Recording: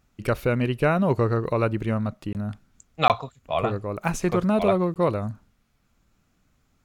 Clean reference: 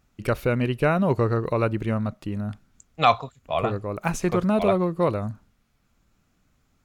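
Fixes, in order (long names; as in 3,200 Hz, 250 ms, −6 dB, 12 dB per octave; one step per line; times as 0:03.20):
repair the gap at 0:02.33/0:03.08/0:04.94, 18 ms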